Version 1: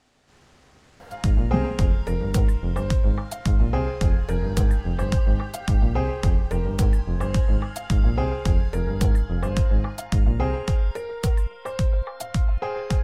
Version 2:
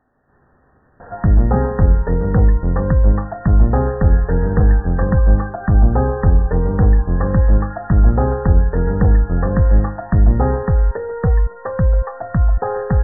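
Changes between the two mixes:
background +7.0 dB; master: add brick-wall FIR low-pass 1900 Hz

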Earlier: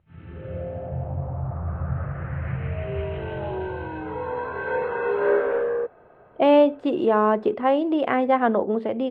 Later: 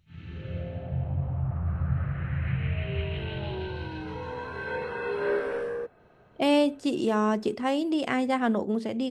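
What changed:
first sound: add high shelf 2900 Hz +11 dB; master: remove EQ curve 210 Hz 0 dB, 530 Hz +9 dB, 1200 Hz +7 dB, 3600 Hz -4 dB, 5400 Hz -21 dB

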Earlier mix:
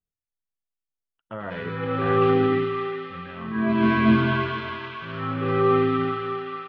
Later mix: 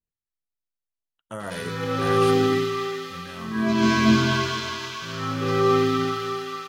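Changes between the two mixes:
background: add high shelf 4400 Hz +5 dB; master: remove LPF 2900 Hz 24 dB/oct

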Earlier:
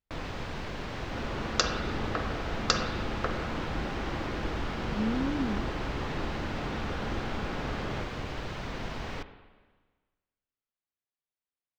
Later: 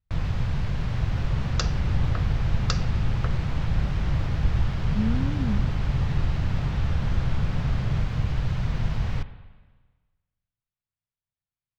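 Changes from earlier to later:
second sound: send off; master: add resonant low shelf 200 Hz +13.5 dB, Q 1.5

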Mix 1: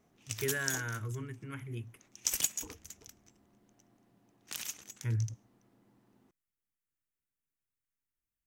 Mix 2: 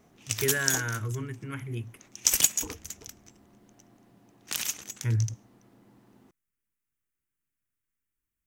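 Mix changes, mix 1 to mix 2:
speech +6.0 dB; background +9.0 dB

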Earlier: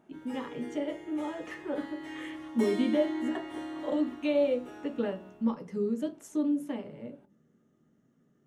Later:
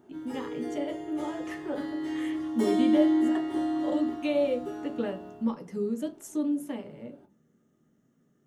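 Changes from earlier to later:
background: send +9.5 dB; master: add high shelf 7800 Hz +11 dB

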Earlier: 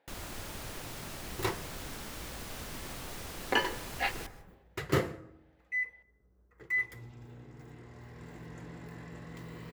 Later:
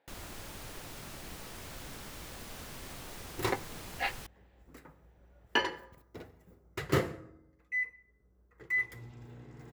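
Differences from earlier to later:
speech: send off; first sound: send off; second sound: entry +2.00 s

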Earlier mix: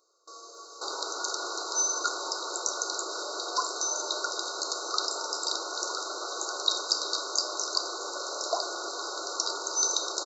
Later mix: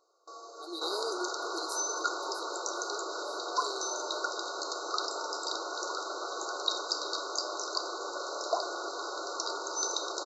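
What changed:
speech: unmuted; first sound: add bell 760 Hz +8.5 dB 0.45 oct; master: add high shelf 4700 Hz -11.5 dB

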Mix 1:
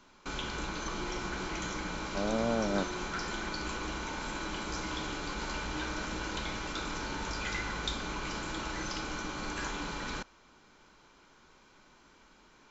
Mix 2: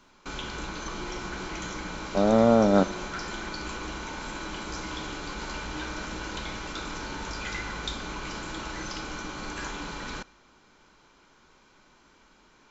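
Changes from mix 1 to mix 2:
speech +9.5 dB; reverb: on, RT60 1.2 s

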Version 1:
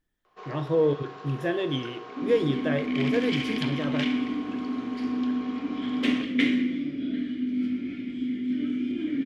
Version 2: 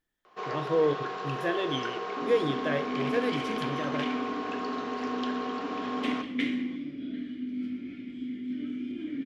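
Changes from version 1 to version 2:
speech: add low shelf 260 Hz -9 dB; first sound +7.5 dB; second sound -6.5 dB

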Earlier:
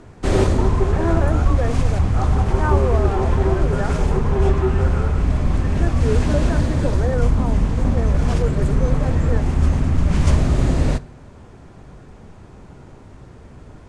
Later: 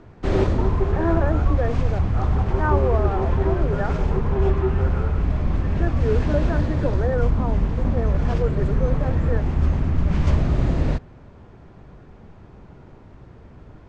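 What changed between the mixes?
background: add air absorption 140 m; reverb: off

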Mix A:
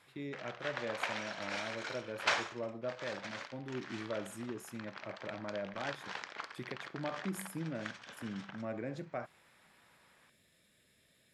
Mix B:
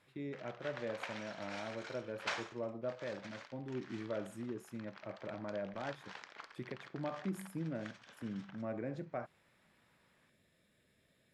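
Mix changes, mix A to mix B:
speech: add high shelf 2300 Hz -9.5 dB; background -7.5 dB

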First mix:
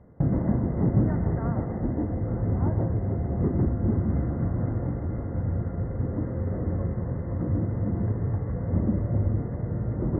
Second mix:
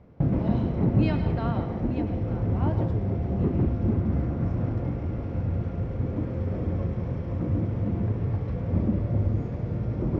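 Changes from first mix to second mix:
speech +5.0 dB; master: remove brick-wall FIR low-pass 2100 Hz

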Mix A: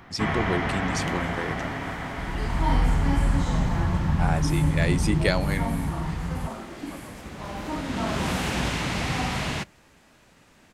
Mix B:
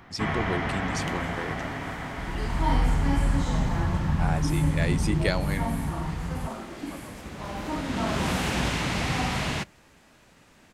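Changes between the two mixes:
speech: send off; first sound: send -10.0 dB

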